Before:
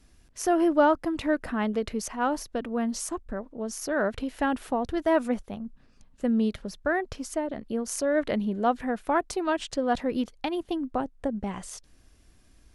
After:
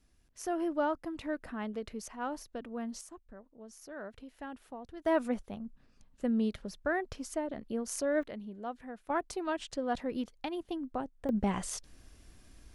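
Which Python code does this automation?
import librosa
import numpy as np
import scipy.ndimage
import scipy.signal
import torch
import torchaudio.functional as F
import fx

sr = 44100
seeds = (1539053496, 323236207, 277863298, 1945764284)

y = fx.gain(x, sr, db=fx.steps((0.0, -10.5), (3.01, -17.5), (5.05, -5.5), (8.23, -15.5), (9.1, -7.5), (11.29, 2.0)))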